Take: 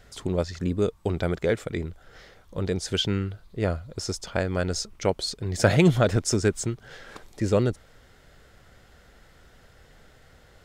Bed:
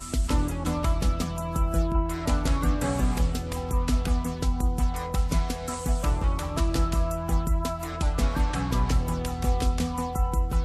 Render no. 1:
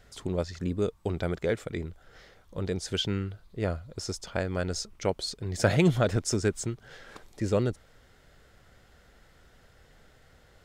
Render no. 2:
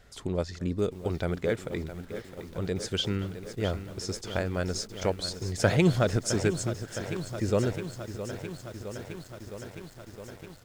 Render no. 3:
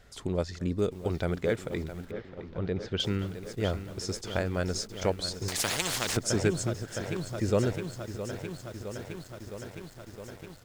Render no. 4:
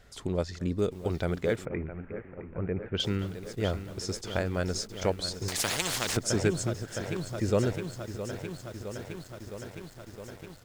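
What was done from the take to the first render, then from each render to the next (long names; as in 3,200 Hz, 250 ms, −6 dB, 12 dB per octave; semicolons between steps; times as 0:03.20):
level −4 dB
single-tap delay 230 ms −23.5 dB; feedback echo at a low word length 663 ms, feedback 80%, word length 8 bits, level −11 dB
0:02.11–0:03.00: high-frequency loss of the air 240 metres; 0:05.48–0:06.17: every bin compressed towards the loudest bin 4 to 1
0:01.65–0:02.95: Chebyshev low-pass filter 2,500 Hz, order 5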